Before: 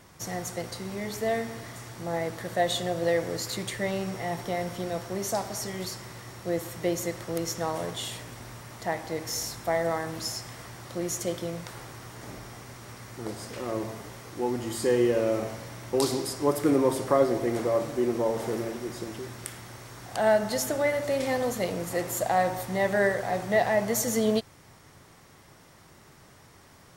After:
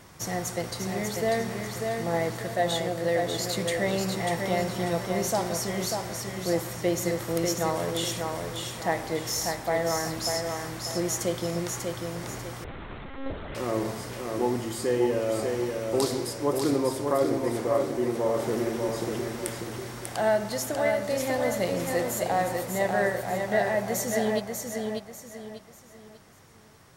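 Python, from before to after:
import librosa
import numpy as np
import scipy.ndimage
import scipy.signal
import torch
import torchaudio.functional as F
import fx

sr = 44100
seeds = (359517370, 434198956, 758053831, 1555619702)

y = fx.rider(x, sr, range_db=3, speed_s=0.5)
y = fx.echo_feedback(y, sr, ms=593, feedback_pct=34, wet_db=-4.5)
y = fx.lpc_monotone(y, sr, seeds[0], pitch_hz=270.0, order=10, at=(12.64, 13.55))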